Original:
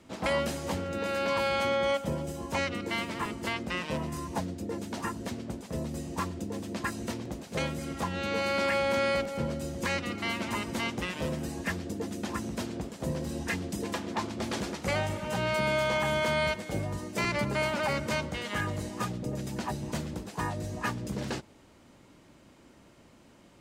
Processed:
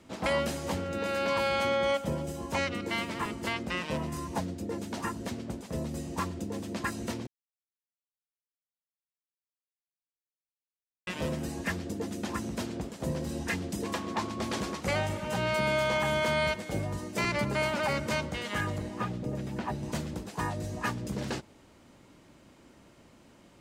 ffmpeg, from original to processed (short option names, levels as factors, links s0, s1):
-filter_complex "[0:a]asettb=1/sr,asplit=3[s0][s1][s2];[s0]atrim=end=13.864[s3];[s1]atrim=start=13.86:end=14.8,asetpts=PTS-STARTPTS,afade=t=in:d=0.004:c=qsin,afade=t=out:st=0.936:d=0.004:c=qsin,aeval=exprs='val(0)+0.00794*sin(2*PI*1100*n/s)':c=same[s4];[s2]atrim=start=14.796[s5];[s3][s4]acrossfade=d=0.004:c1=hsin:c2=qsin[s6];[s6][s5]acrossfade=d=0.004:c1=qsin:c2=hsin,asettb=1/sr,asplit=3[s7][s8][s9];[s7]atrim=end=18.784[s10];[s8]atrim=start=18.78:end=19.83,asetpts=PTS-STARTPTS,afade=t=in:d=0.004:c=qsin,afade=t=out:st=1.046:d=0.004:c=qsin,acrossover=split=3400[s11][s12];[s12]acompressor=threshold=0.00126:ratio=4:attack=1:release=60[s13];[s11][s13]amix=inputs=2:normalize=0[s14];[s9]atrim=start=19.826[s15];[s10][s14]acrossfade=d=0.004:c1=hsin:c2=qsin[s16];[s16][s15]acrossfade=d=0.004:c1=qsin:c2=hsin,asplit=3[s17][s18][s19];[s17]atrim=end=7.27,asetpts=PTS-STARTPTS,afade=t=out:st=7.266:d=0.004:c=hsin[s20];[s18]atrim=start=7.27:end=11.07,asetpts=PTS-STARTPTS,volume=0[s21];[s19]atrim=start=11.07,asetpts=PTS-STARTPTS,afade=t=in:d=0.004:c=hsin[s22];[s20][s21][s22]concat=n=3:v=0:a=1"